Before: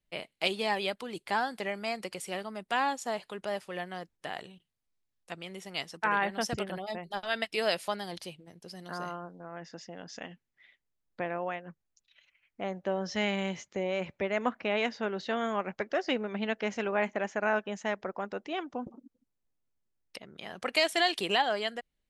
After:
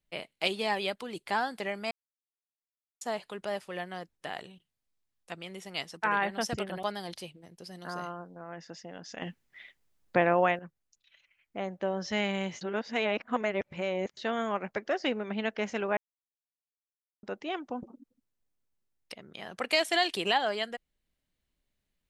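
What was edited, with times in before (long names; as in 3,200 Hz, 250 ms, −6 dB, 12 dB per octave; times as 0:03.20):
0:01.91–0:03.01: silence
0:06.83–0:07.87: remove
0:10.26–0:11.63: clip gain +10 dB
0:13.65–0:15.21: reverse
0:17.01–0:18.27: silence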